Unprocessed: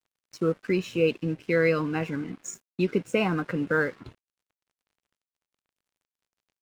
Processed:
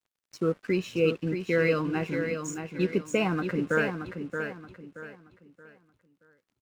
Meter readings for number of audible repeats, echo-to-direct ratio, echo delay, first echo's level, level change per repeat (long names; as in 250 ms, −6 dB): 3, −6.5 dB, 626 ms, −7.0 dB, −10.0 dB